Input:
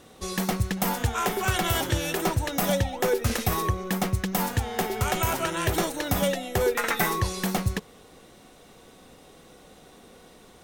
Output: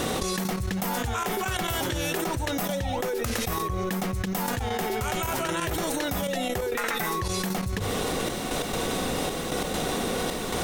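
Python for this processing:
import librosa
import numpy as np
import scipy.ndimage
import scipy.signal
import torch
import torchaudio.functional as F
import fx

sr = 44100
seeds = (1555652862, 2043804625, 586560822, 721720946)

y = fx.hum_notches(x, sr, base_hz=50, count=2)
y = fx.step_gate(y, sr, bpm=134, pattern='xx..x.xxx', floor_db=-12.0, edge_ms=4.5)
y = fx.quant_companded(y, sr, bits=8)
y = fx.env_flatten(y, sr, amount_pct=100)
y = y * librosa.db_to_amplitude(-7.5)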